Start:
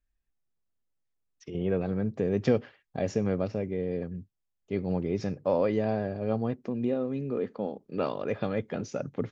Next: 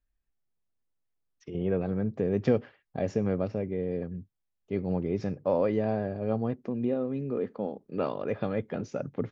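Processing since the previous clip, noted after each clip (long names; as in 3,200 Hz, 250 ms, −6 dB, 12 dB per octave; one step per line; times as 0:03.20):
high-shelf EQ 3,500 Hz −9 dB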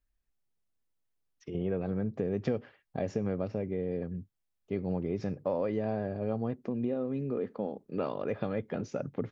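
downward compressor 2.5 to 1, threshold −29 dBFS, peak gain reduction 7.5 dB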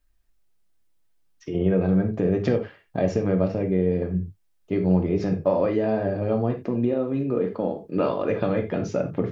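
convolution reverb, pre-delay 3 ms, DRR 3 dB
level +8 dB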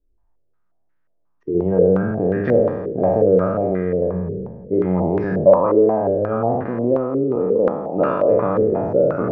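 peak hold with a decay on every bin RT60 1.71 s
low-pass on a step sequencer 5.6 Hz 410–1,600 Hz
level −1.5 dB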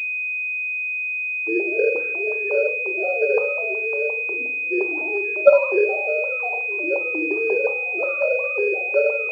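three sine waves on the formant tracks
rectangular room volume 630 cubic metres, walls furnished, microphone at 1.2 metres
switching amplifier with a slow clock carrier 2,500 Hz
level −7 dB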